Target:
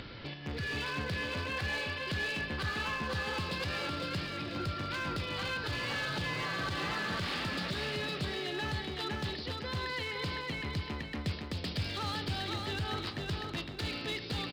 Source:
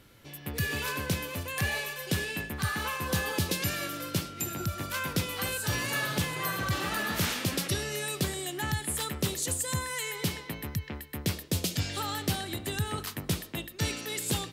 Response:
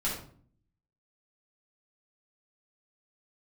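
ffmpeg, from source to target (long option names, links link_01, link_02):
-filter_complex "[0:a]lowpass=frequency=2600:poles=1,aemphasis=mode=production:type=75fm,acompressor=mode=upward:threshold=-34dB:ratio=2.5,asplit=2[link_01][link_02];[link_02]alimiter=level_in=1dB:limit=-24dB:level=0:latency=1:release=20,volume=-1dB,volume=-2.5dB[link_03];[link_01][link_03]amix=inputs=2:normalize=0,acompressor=threshold=-25dB:ratio=10,aresample=11025,acrusher=bits=5:mode=log:mix=0:aa=0.000001,aresample=44100,asoftclip=type=hard:threshold=-27.5dB,aecho=1:1:510|1020|1530|2040:0.631|0.17|0.046|0.0124,volume=-4.5dB"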